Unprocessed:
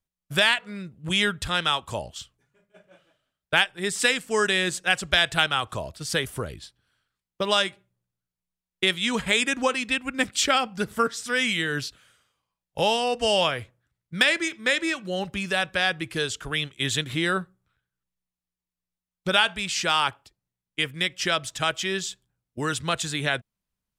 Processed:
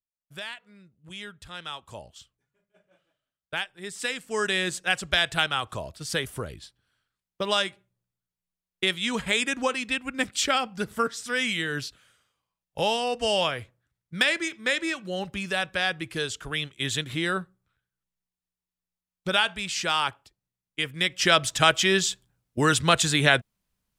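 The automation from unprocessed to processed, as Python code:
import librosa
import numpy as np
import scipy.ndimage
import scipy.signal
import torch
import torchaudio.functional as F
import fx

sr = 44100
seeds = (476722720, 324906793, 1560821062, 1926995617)

y = fx.gain(x, sr, db=fx.line((1.32, -17.0), (2.0, -10.0), (3.94, -10.0), (4.54, -2.5), (20.83, -2.5), (21.4, 6.0)))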